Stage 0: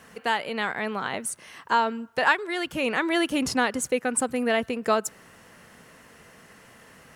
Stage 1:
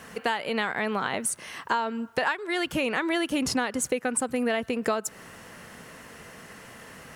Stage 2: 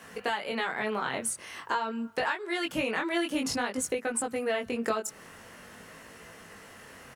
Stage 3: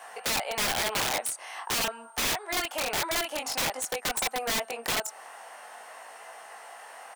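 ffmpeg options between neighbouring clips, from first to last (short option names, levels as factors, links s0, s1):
-af "acompressor=threshold=0.0355:ratio=6,volume=1.88"
-filter_complex "[0:a]flanger=delay=18:depth=5.3:speed=0.48,acrossover=split=160[s0][s1];[s0]adelay=30[s2];[s2][s1]amix=inputs=2:normalize=0"
-af "aeval=exprs='val(0)+0.00141*sin(2*PI*8700*n/s)':c=same,highpass=f=760:t=q:w=5.2,aeval=exprs='(mod(13.3*val(0)+1,2)-1)/13.3':c=same"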